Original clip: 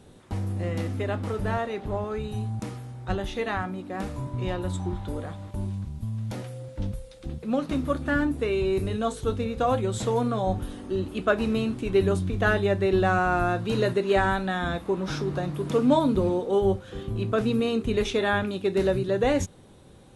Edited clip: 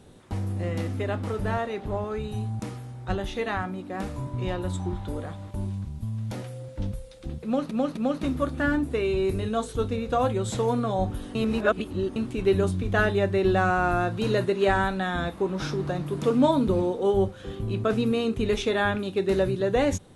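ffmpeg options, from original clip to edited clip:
-filter_complex "[0:a]asplit=5[a][b][c][d][e];[a]atrim=end=7.712[f];[b]atrim=start=7.448:end=7.712[g];[c]atrim=start=7.448:end=10.832[h];[d]atrim=start=10.828:end=11.642,asetpts=PTS-STARTPTS,areverse[i];[e]atrim=start=11.638[j];[f][g]acrossfade=d=0.004:c1=hsin:c2=hsin[k];[k][h]acrossfade=d=0.004:c1=hsin:c2=hsin[l];[l][i]acrossfade=d=0.004:c1=hsin:c2=hsin[m];[m][j]acrossfade=d=0.004:c1=hsin:c2=hsin"

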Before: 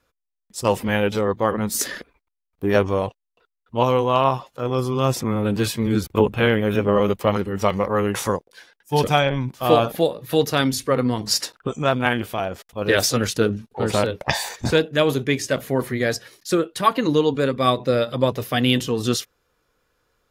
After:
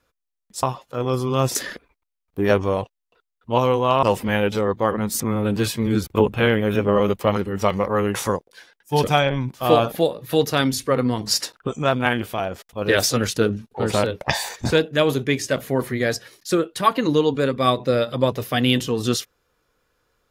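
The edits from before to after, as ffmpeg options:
-filter_complex "[0:a]asplit=5[a][b][c][d][e];[a]atrim=end=0.632[f];[b]atrim=start=4.278:end=5.202[g];[c]atrim=start=1.798:end=4.282[h];[d]atrim=start=0.628:end=1.802[i];[e]atrim=start=5.198[j];[f][g]acrossfade=d=0.004:c1=hsin:c2=hsin[k];[k][h]acrossfade=d=0.004:c1=hsin:c2=hsin[l];[l][i]acrossfade=d=0.004:c1=hsin:c2=hsin[m];[m][j]acrossfade=d=0.004:c1=hsin:c2=hsin"

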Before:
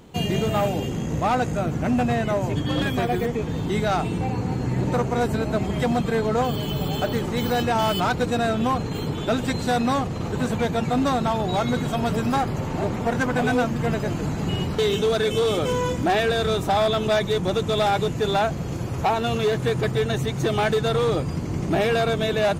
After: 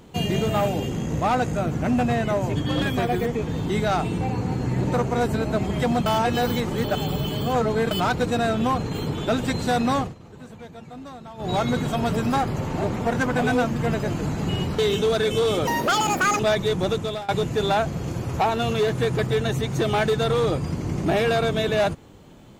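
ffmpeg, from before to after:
-filter_complex "[0:a]asplit=8[a][b][c][d][e][f][g][h];[a]atrim=end=6.062[i];[b]atrim=start=6.058:end=7.912,asetpts=PTS-STARTPTS,areverse[j];[c]atrim=start=7.908:end=10.15,asetpts=PTS-STARTPTS,afade=t=out:st=2.102:d=0.14:silence=0.133352[k];[d]atrim=start=10.15:end=11.37,asetpts=PTS-STARTPTS,volume=-17.5dB[l];[e]atrim=start=11.37:end=15.674,asetpts=PTS-STARTPTS,afade=t=in:d=0.14:silence=0.133352[m];[f]atrim=start=15.67:end=17.04,asetpts=PTS-STARTPTS,asetrate=83349,aresample=44100[n];[g]atrim=start=17.036:end=17.93,asetpts=PTS-STARTPTS,afade=t=out:st=0.514:d=0.38:silence=0.0630957[o];[h]atrim=start=17.93,asetpts=PTS-STARTPTS,afade=t=in:d=0.004:c=hsin:silence=0.0630957[p];[i][j]acrossfade=d=0.004:c1=hsin:c2=hsin[q];[k][l][m]concat=n=3:v=0:a=1[r];[q][r]acrossfade=d=0.004:c1=hsin:c2=hsin[s];[s][n]acrossfade=d=0.004:c1=hsin:c2=hsin[t];[o][p]concat=n=2:v=0:a=1[u];[t][u]acrossfade=d=0.004:c1=hsin:c2=hsin"

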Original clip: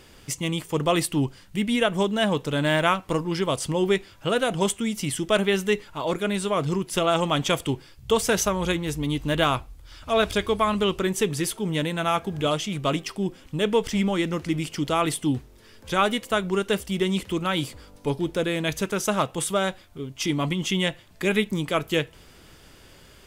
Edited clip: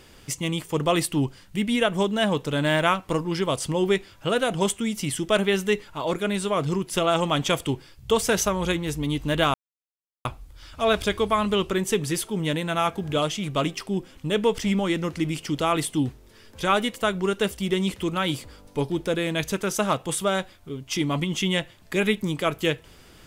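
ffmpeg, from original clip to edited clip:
-filter_complex "[0:a]asplit=2[a][b];[a]atrim=end=9.54,asetpts=PTS-STARTPTS,afade=t=out:st=9.536:d=0.004:c=hsin,apad=pad_dur=0.71[c];[b]atrim=start=9.54,asetpts=PTS-STARTPTS,afade=t=in:d=0.004:c=hsin[d];[c][d]concat=n=2:v=0:a=1"

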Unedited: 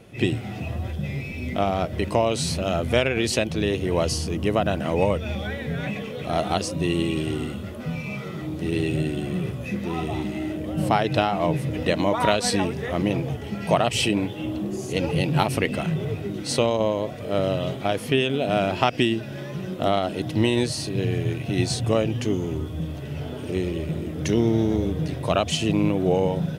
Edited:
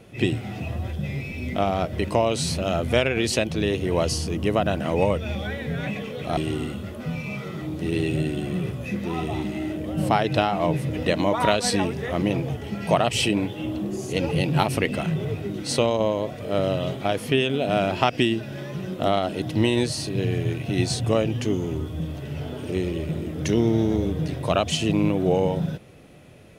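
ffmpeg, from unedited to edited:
-filter_complex "[0:a]asplit=2[a][b];[a]atrim=end=6.372[c];[b]atrim=start=7.168[d];[c][d]acrossfade=d=0.004:c1=hsin:c2=hsin"

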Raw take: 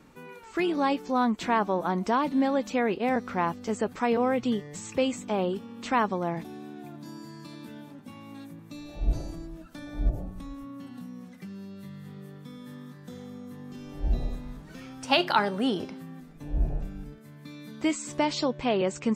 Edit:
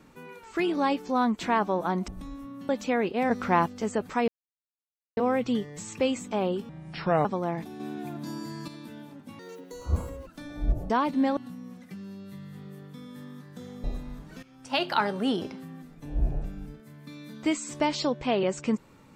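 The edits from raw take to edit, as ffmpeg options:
-filter_complex "[0:a]asplit=16[a][b][c][d][e][f][g][h][i][j][k][l][m][n][o][p];[a]atrim=end=2.082[q];[b]atrim=start=10.268:end=10.882[r];[c]atrim=start=2.548:end=3.172[s];[d]atrim=start=3.168:end=3.522,asetpts=PTS-STARTPTS,volume=4.5dB[t];[e]atrim=start=3.518:end=4.14,asetpts=PTS-STARTPTS,afade=t=out:st=0.618:d=0.004:c=hsin,apad=pad_dur=0.89[u];[f]atrim=start=4.14:end=5.664,asetpts=PTS-STARTPTS,afade=t=in:d=0.004:c=hsin[v];[g]atrim=start=5.66:end=6.04,asetpts=PTS-STARTPTS,asetrate=29988,aresample=44100,atrim=end_sample=24644,asetpts=PTS-STARTPTS[w];[h]atrim=start=6.036:end=6.592[x];[i]atrim=start=6.588:end=7.472,asetpts=PTS-STARTPTS,volume=6dB[y];[j]atrim=start=7.468:end=8.184[z];[k]atrim=start=8.18:end=9.64,asetpts=PTS-STARTPTS,asetrate=73206,aresample=44100[aa];[l]atrim=start=9.636:end=10.272[ab];[m]atrim=start=2.078:end=2.552[ac];[n]atrim=start=10.878:end=13.352[ad];[o]atrim=start=14.218:end=14.81,asetpts=PTS-STARTPTS,afade=t=out:st=0.588:d=0.004:c=hsin:silence=0.158489[ae];[p]atrim=start=14.81,asetpts=PTS-STARTPTS,afade=t=in:d=0.98:c=qsin:silence=0.158489[af];[q][r]acrossfade=d=0.004:c1=hsin:c2=hsin[ag];[ag][s]acrossfade=d=0.004:c1=hsin:c2=hsin[ah];[ah][t]acrossfade=d=0.004:c1=hsin:c2=hsin[ai];[u][v]concat=n=2:v=0:a=1[aj];[ai][aj]acrossfade=d=0.004:c1=hsin:c2=hsin[ak];[ak][w]acrossfade=d=0.004:c1=hsin:c2=hsin[al];[al][x]acrossfade=d=0.004:c1=hsin:c2=hsin[am];[am][y]acrossfade=d=0.004:c1=hsin:c2=hsin[an];[an][z]acrossfade=d=0.004:c1=hsin:c2=hsin[ao];[ao][aa]acrossfade=d=0.004:c1=hsin:c2=hsin[ap];[ap][ab]acrossfade=d=0.004:c1=hsin:c2=hsin[aq];[aq][ac]acrossfade=d=0.004:c1=hsin:c2=hsin[ar];[ar][ad]acrossfade=d=0.004:c1=hsin:c2=hsin[as];[ae][af]concat=n=2:v=0:a=1[at];[as][at]acrossfade=d=0.004:c1=hsin:c2=hsin"

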